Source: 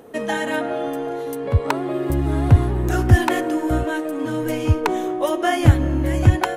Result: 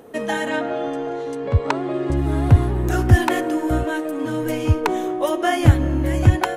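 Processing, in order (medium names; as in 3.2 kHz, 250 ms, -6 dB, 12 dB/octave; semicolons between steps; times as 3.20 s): 0.48–2.17 s: low-pass 7.7 kHz 24 dB/octave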